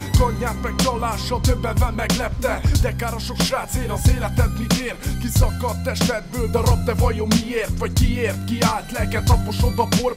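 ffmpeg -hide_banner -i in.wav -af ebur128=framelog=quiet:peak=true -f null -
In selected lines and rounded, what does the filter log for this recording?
Integrated loudness:
  I:         -20.9 LUFS
  Threshold: -30.9 LUFS
Loudness range:
  LRA:         1.1 LU
  Threshold: -41.0 LUFS
  LRA low:   -21.5 LUFS
  LRA high:  -20.4 LUFS
True peak:
  Peak:       -6.5 dBFS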